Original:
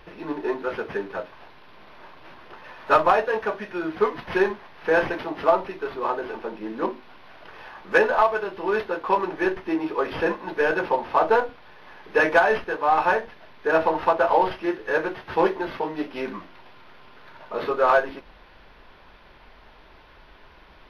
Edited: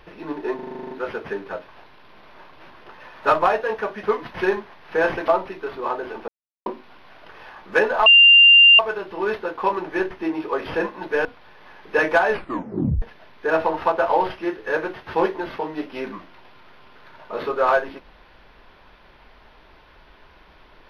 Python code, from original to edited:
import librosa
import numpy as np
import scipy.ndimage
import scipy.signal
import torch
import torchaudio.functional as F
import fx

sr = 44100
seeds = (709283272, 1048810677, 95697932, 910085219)

y = fx.edit(x, sr, fx.stutter(start_s=0.55, slice_s=0.04, count=10),
    fx.cut(start_s=3.67, length_s=0.29),
    fx.cut(start_s=5.21, length_s=0.26),
    fx.silence(start_s=6.47, length_s=0.38),
    fx.insert_tone(at_s=8.25, length_s=0.73, hz=2790.0, db=-7.0),
    fx.cut(start_s=10.71, length_s=0.75),
    fx.tape_stop(start_s=12.52, length_s=0.71), tone=tone)